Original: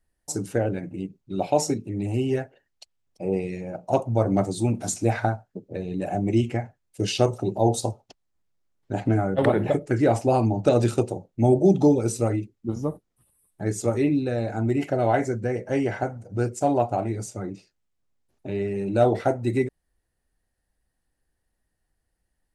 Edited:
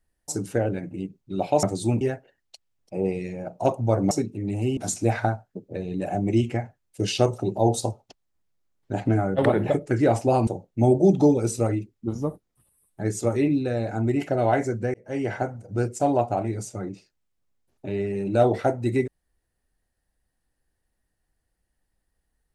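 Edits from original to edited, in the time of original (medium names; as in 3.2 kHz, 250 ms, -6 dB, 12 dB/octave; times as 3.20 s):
1.63–2.29 s: swap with 4.39–4.77 s
10.47–11.08 s: delete
15.55–15.93 s: fade in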